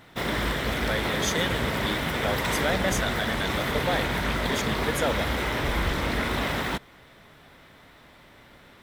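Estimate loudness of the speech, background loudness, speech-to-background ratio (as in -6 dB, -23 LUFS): -31.0 LUFS, -27.0 LUFS, -4.0 dB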